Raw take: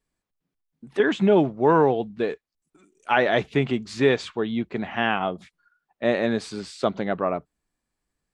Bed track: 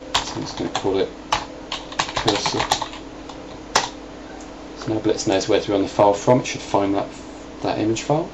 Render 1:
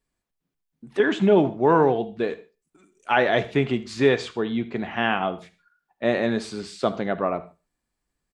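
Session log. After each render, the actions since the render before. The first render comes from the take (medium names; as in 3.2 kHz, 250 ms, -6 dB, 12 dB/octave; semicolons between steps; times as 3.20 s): feedback delay 75 ms, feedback 30%, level -20 dB; gated-style reverb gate 170 ms falling, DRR 12 dB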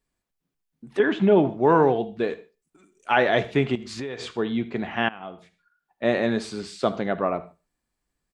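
0.99–1.49 s: distance through air 150 m; 3.75–4.38 s: compression 12:1, threshold -28 dBFS; 5.09–6.04 s: fade in, from -21 dB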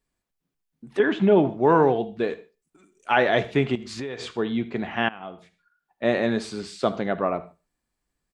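no audible change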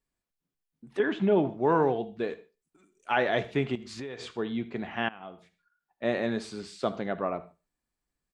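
trim -6 dB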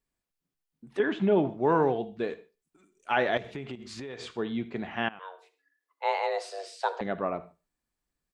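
3.37–4.25 s: compression, threshold -34 dBFS; 5.19–7.01 s: frequency shift +280 Hz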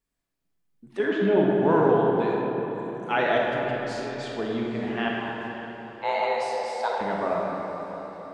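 echo that smears into a reverb 540 ms, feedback 55%, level -15 dB; algorithmic reverb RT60 3.6 s, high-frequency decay 0.45×, pre-delay 0 ms, DRR -2.5 dB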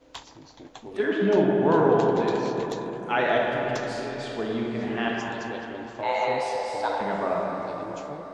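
add bed track -20.5 dB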